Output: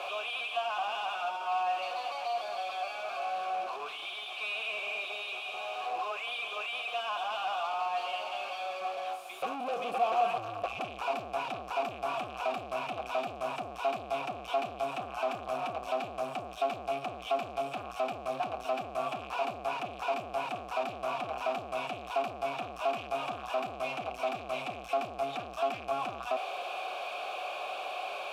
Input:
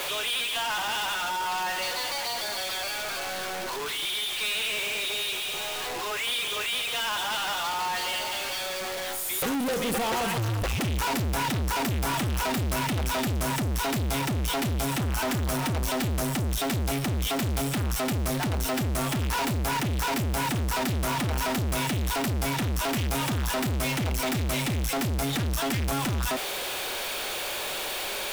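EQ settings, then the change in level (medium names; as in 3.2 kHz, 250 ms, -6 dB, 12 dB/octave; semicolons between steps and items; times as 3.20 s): vowel filter a; +6.5 dB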